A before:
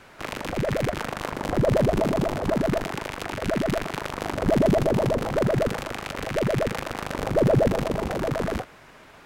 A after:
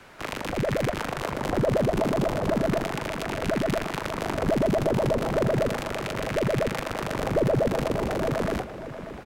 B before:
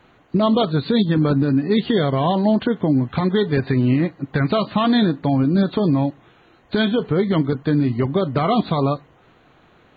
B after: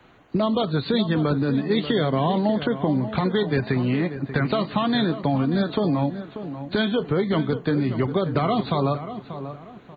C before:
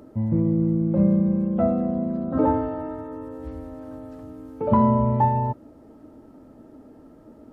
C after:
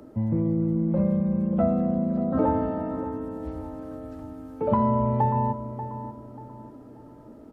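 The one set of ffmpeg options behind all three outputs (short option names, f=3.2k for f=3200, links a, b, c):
-filter_complex "[0:a]acrossover=split=120|410[a][b][c];[a]acompressor=threshold=-31dB:ratio=4[d];[b]acompressor=threshold=-25dB:ratio=4[e];[c]acompressor=threshold=-22dB:ratio=4[f];[d][e][f]amix=inputs=3:normalize=0,asplit=2[g][h];[h]adelay=587,lowpass=f=2.1k:p=1,volume=-11dB,asplit=2[i][j];[j]adelay=587,lowpass=f=2.1k:p=1,volume=0.35,asplit=2[k][l];[l]adelay=587,lowpass=f=2.1k:p=1,volume=0.35,asplit=2[m][n];[n]adelay=587,lowpass=f=2.1k:p=1,volume=0.35[o];[i][k][m][o]amix=inputs=4:normalize=0[p];[g][p]amix=inputs=2:normalize=0"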